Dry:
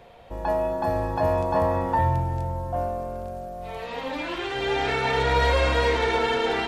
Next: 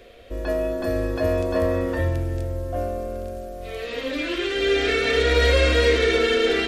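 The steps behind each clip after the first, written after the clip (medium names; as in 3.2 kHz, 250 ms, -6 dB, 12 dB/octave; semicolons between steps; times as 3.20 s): static phaser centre 360 Hz, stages 4; trim +6.5 dB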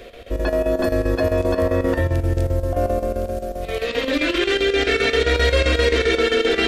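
in parallel at 0 dB: compressor with a negative ratio -26 dBFS; on the sum: square tremolo 7.6 Hz, depth 65%, duty 75%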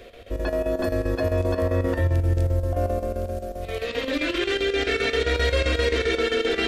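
peaking EQ 90 Hz +6.5 dB 0.22 oct; trim -5 dB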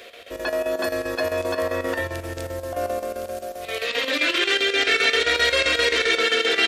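high-pass 1.3 kHz 6 dB/octave; delay 517 ms -20.5 dB; trim +8.5 dB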